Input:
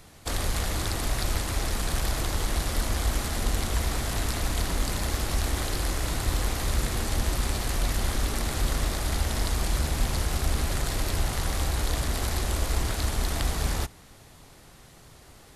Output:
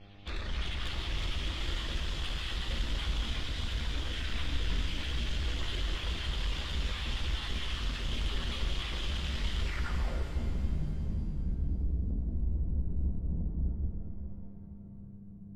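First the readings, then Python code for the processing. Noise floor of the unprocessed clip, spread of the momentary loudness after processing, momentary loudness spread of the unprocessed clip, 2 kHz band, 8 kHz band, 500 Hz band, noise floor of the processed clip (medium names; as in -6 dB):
-51 dBFS, 5 LU, 1 LU, -6.5 dB, -19.5 dB, -12.5 dB, -47 dBFS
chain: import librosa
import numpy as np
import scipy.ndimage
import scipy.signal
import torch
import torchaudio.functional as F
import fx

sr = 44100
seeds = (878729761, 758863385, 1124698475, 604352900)

y = fx.spec_dropout(x, sr, seeds[0], share_pct=24)
y = fx.peak_eq(y, sr, hz=740.0, db=-8.0, octaves=0.38)
y = fx.echo_wet_highpass(y, sr, ms=453, feedback_pct=72, hz=1600.0, wet_db=-6.0)
y = fx.chorus_voices(y, sr, voices=6, hz=0.49, base_ms=15, depth_ms=3.2, mix_pct=55)
y = fx.dmg_buzz(y, sr, base_hz=100.0, harmonics=8, level_db=-52.0, tilt_db=-4, odd_only=False)
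y = scipy.signal.sosfilt(scipy.signal.butter(2, 4900.0, 'lowpass', fs=sr, output='sos'), y)
y = fx.filter_sweep_lowpass(y, sr, from_hz=3200.0, to_hz=190.0, start_s=9.61, end_s=10.5, q=4.8)
y = 10.0 ** (-26.5 / 20.0) * np.tanh(y / 10.0 ** (-26.5 / 20.0))
y = fx.low_shelf(y, sr, hz=150.0, db=4.0)
y = fx.rev_shimmer(y, sr, seeds[1], rt60_s=2.7, semitones=7, shimmer_db=-8, drr_db=2.0)
y = y * 10.0 ** (-6.0 / 20.0)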